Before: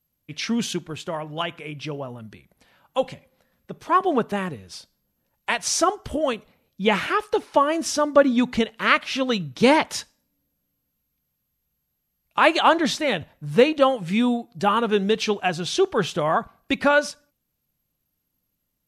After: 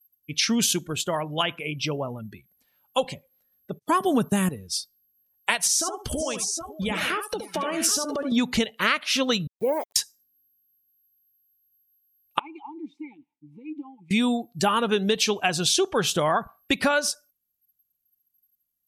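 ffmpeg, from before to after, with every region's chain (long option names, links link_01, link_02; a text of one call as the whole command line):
ffmpeg -i in.wav -filter_complex "[0:a]asettb=1/sr,asplit=3[link_01][link_02][link_03];[link_01]atrim=end=3.794[link_04];[link_02]atrim=start=3.79:end=4.49,asetpts=PTS-STARTPTS,afade=type=in:duration=0.004:curve=qsin,afade=type=out:start_time=0.696:duration=0.004:curve=qsin,highpass=97,agate=range=-39dB:threshold=-41dB:ratio=16:release=100:detection=peak,bass=frequency=250:gain=15,treble=frequency=4000:gain=10[link_05];[link_03]atrim=start=4.486[link_06];[link_04][link_05]acrossfade=duration=0.004:curve1=hsin:curve2=qsin[link_07];[link_07][link_06]acrossfade=duration=0.004:curve1=qsin:curve2=hsin,asettb=1/sr,asplit=3[link_08][link_09][link_10];[link_08]atrim=end=5.584[link_11];[link_09]atrim=start=5.58:end=8.32,asetpts=PTS-STARTPTS,afade=type=in:duration=0.004:curve=qsin,afade=type=out:start_time=2.736:duration=0.004:curve=qsin,acompressor=threshold=-27dB:ratio=16:attack=3.2:release=140:knee=1:detection=peak,aecho=1:1:70|550|761|773:0.422|0.158|0.224|0.282,atrim=end_sample=120834[link_12];[link_10]atrim=start=8.316[link_13];[link_11][link_12]acrossfade=duration=0.004:curve1=hsin:curve2=qsin[link_14];[link_14][link_13]acrossfade=duration=0.004:curve1=qsin:curve2=hsin,asettb=1/sr,asplit=3[link_15][link_16][link_17];[link_15]atrim=end=9.474[link_18];[link_16]atrim=start=9.47:end=9.96,asetpts=PTS-STARTPTS,afade=type=in:duration=0.004:curve=qsin,afade=type=out:start_time=0.486:duration=0.004:curve=qsin,acompressor=threshold=-18dB:ratio=2.5:attack=3.2:release=140:knee=1:detection=peak,bandpass=frequency=540:width_type=q:width=2.8,aeval=exprs='val(0)*gte(abs(val(0)),0.00944)':channel_layout=same[link_19];[link_17]atrim=start=9.956[link_20];[link_18][link_19]acrossfade=duration=0.004:curve1=hsin:curve2=qsin[link_21];[link_21][link_20]acrossfade=duration=0.004:curve1=qsin:curve2=hsin,asettb=1/sr,asplit=3[link_22][link_23][link_24];[link_22]atrim=end=12.394[link_25];[link_23]atrim=start=12.39:end=14.11,asetpts=PTS-STARTPTS,afade=type=in:duration=0.004:curve=qsin,afade=type=out:start_time=1.716:duration=0.004:curve=qsin,highshelf=frequency=9500:gain=4.5,acompressor=threshold=-31dB:ratio=4:attack=3.2:release=140:knee=1:detection=peak,asplit=3[link_26][link_27][link_28];[link_26]bandpass=frequency=300:width_type=q:width=8,volume=0dB[link_29];[link_27]bandpass=frequency=870:width_type=q:width=8,volume=-6dB[link_30];[link_28]bandpass=frequency=2240:width_type=q:width=8,volume=-9dB[link_31];[link_29][link_30][link_31]amix=inputs=3:normalize=0[link_32];[link_24]atrim=start=14.106[link_33];[link_25][link_32]acrossfade=duration=0.004:curve1=hsin:curve2=qsin[link_34];[link_34][link_33]acrossfade=duration=0.004:curve1=qsin:curve2=hsin,aemphasis=mode=production:type=75fm,afftdn=noise_reduction=20:noise_floor=-41,acompressor=threshold=-22dB:ratio=5,volume=3dB" out.wav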